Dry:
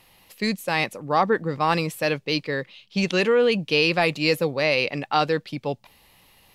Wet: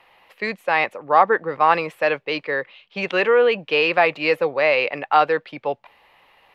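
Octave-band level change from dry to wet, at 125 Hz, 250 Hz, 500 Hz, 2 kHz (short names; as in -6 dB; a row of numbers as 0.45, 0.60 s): -10.0, -5.5, +3.5, +4.0 dB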